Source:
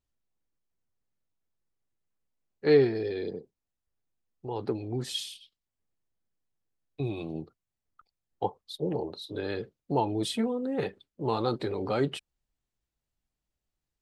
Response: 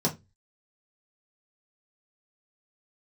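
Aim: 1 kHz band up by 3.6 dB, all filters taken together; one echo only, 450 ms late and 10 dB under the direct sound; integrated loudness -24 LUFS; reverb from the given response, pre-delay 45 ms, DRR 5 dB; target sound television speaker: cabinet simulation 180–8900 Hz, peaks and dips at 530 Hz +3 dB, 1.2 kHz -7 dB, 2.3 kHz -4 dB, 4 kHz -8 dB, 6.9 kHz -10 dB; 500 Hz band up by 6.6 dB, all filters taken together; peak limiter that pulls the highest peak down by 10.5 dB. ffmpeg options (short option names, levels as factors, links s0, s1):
-filter_complex "[0:a]equalizer=f=500:t=o:g=6,equalizer=f=1000:t=o:g=3.5,alimiter=limit=0.141:level=0:latency=1,aecho=1:1:450:0.316,asplit=2[s0][s1];[1:a]atrim=start_sample=2205,adelay=45[s2];[s1][s2]afir=irnorm=-1:irlink=0,volume=0.2[s3];[s0][s3]amix=inputs=2:normalize=0,highpass=f=180:w=0.5412,highpass=f=180:w=1.3066,equalizer=f=530:t=q:w=4:g=3,equalizer=f=1200:t=q:w=4:g=-7,equalizer=f=2300:t=q:w=4:g=-4,equalizer=f=4000:t=q:w=4:g=-8,equalizer=f=6900:t=q:w=4:g=-10,lowpass=f=8900:w=0.5412,lowpass=f=8900:w=1.3066,volume=1.19"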